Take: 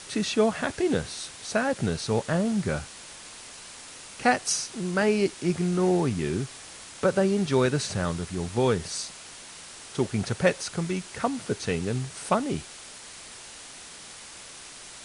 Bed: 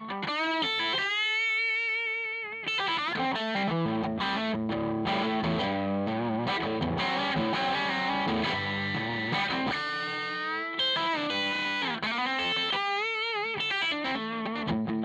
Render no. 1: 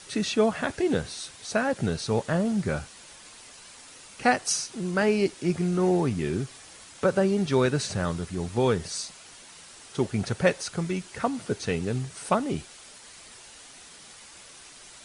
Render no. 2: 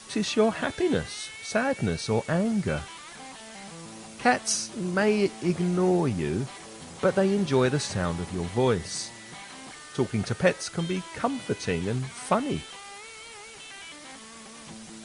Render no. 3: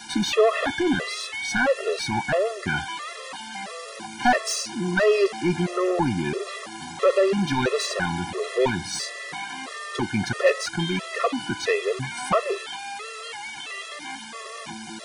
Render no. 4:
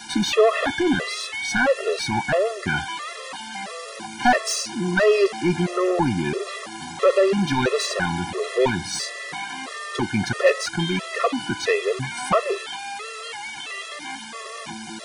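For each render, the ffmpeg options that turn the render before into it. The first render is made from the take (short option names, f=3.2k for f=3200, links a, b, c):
-af "afftdn=nr=6:nf=-45"
-filter_complex "[1:a]volume=-15.5dB[a];[0:a][a]amix=inputs=2:normalize=0"
-filter_complex "[0:a]asplit=2[a][b];[b]highpass=f=720:p=1,volume=21dB,asoftclip=type=tanh:threshold=-8dB[c];[a][c]amix=inputs=2:normalize=0,lowpass=f=2.7k:p=1,volume=-6dB,afftfilt=real='re*gt(sin(2*PI*1.5*pts/sr)*(1-2*mod(floor(b*sr/1024/350),2)),0)':imag='im*gt(sin(2*PI*1.5*pts/sr)*(1-2*mod(floor(b*sr/1024/350),2)),0)':win_size=1024:overlap=0.75"
-af "volume=2dB"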